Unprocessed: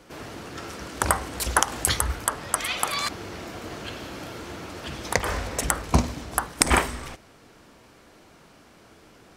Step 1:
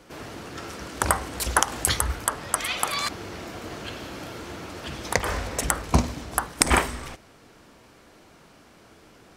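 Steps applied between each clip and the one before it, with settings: nothing audible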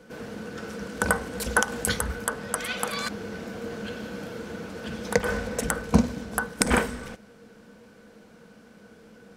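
small resonant body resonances 210/470/1500 Hz, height 16 dB, ringing for 75 ms; gain -5 dB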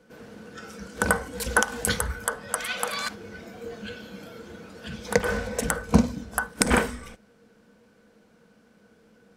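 spectral noise reduction 8 dB; gain +1 dB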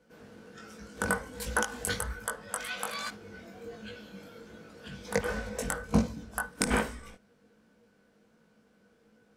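chorus 1.3 Hz, delay 18 ms, depth 2.8 ms; gain -3.5 dB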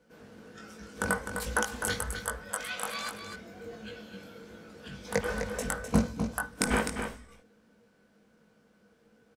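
echo 0.255 s -7.5 dB

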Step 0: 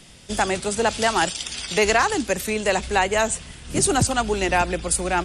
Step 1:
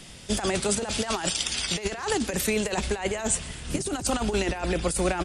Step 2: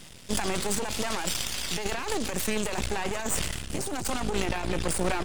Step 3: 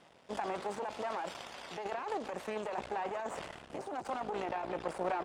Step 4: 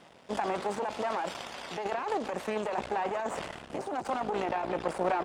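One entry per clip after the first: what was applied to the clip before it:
negative-ratio compressor -24 dBFS, ratio -0.5; feedback echo 0.127 s, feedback 51%, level -23.5 dB; gain -1.5 dB
half-wave rectifier; sustainer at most 36 dB/s
band-pass 750 Hz, Q 1.3; gain -1.5 dB
bell 220 Hz +2 dB; gain +5.5 dB

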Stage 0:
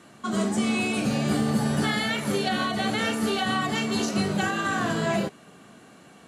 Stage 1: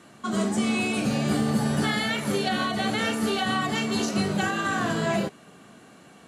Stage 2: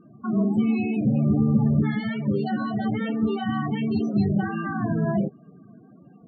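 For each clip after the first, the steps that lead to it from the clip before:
nothing audible
loudest bins only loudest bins 16; RIAA curve playback; gain -3.5 dB

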